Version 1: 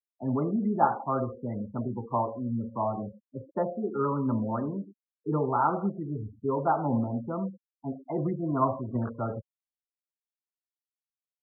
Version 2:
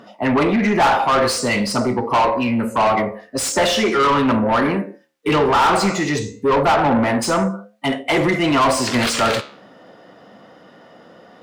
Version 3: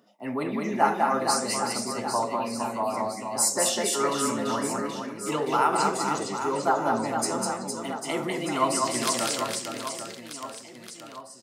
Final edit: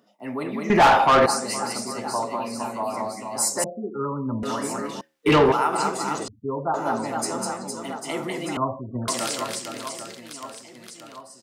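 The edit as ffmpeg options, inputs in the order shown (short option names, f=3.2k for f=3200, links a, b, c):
-filter_complex "[1:a]asplit=2[a][b];[0:a]asplit=3[c][d][e];[2:a]asplit=6[f][g][h][i][j][k];[f]atrim=end=0.702[l];[a]atrim=start=0.698:end=1.262[m];[g]atrim=start=1.258:end=3.642[n];[c]atrim=start=3.638:end=4.432[o];[h]atrim=start=4.428:end=5.012[p];[b]atrim=start=5.008:end=5.522[q];[i]atrim=start=5.518:end=6.282[r];[d]atrim=start=6.278:end=6.742[s];[j]atrim=start=6.738:end=8.572[t];[e]atrim=start=8.568:end=9.082[u];[k]atrim=start=9.078[v];[l][m]acrossfade=d=0.004:c1=hsin:c2=hsin[w];[w][n]acrossfade=d=0.004:c1=hsin:c2=hsin[x];[x][o]acrossfade=d=0.004:c1=hsin:c2=hsin[y];[y][p]acrossfade=d=0.004:c1=hsin:c2=hsin[z];[z][q]acrossfade=d=0.004:c1=hsin:c2=hsin[aa];[aa][r]acrossfade=d=0.004:c1=hsin:c2=hsin[ab];[ab][s]acrossfade=d=0.004:c1=hsin:c2=hsin[ac];[ac][t]acrossfade=d=0.004:c1=hsin:c2=hsin[ad];[ad][u]acrossfade=d=0.004:c1=hsin:c2=hsin[ae];[ae][v]acrossfade=d=0.004:c1=hsin:c2=hsin"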